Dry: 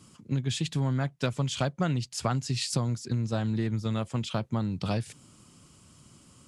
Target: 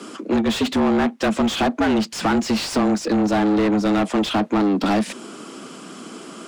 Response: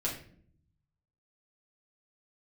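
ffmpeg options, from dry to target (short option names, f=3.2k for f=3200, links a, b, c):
-filter_complex "[0:a]afreqshift=98,asplit=2[a][b];[b]highpass=f=720:p=1,volume=29dB,asoftclip=type=tanh:threshold=-15dB[c];[a][c]amix=inputs=2:normalize=0,lowpass=f=1.4k:p=1,volume=-6dB,volume=4.5dB"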